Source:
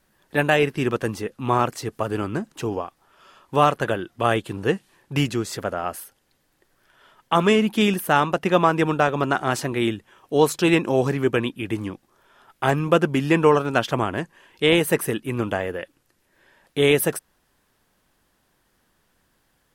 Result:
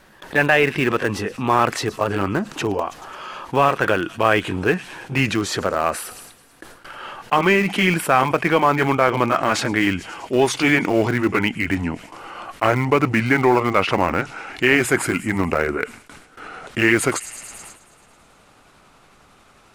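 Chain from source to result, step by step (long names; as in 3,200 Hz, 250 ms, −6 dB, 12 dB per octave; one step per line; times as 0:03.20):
pitch glide at a constant tempo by −4.5 semitones starting unshifted
mid-hump overdrive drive 9 dB, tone 2,800 Hz, clips at −3 dBFS
low-shelf EQ 380 Hz +4 dB
on a send: delay with a high-pass on its return 108 ms, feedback 71%, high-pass 5,200 Hz, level −17 dB
on the sum: dynamic equaliser 2,000 Hz, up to +6 dB, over −36 dBFS, Q 1.5
in parallel at −12 dB: centre clipping without the shift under −17.5 dBFS
on the sum: noise gate with hold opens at −50 dBFS
envelope flattener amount 50%
level −4 dB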